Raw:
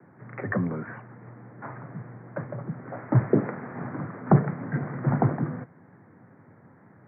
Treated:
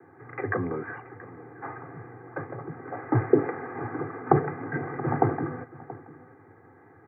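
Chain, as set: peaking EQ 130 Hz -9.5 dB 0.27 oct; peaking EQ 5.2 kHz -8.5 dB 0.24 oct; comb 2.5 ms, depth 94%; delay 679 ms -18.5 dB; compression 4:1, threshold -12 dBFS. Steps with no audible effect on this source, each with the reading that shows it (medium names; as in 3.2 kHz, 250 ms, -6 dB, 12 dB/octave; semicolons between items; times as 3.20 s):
peaking EQ 5.2 kHz: input has nothing above 1.8 kHz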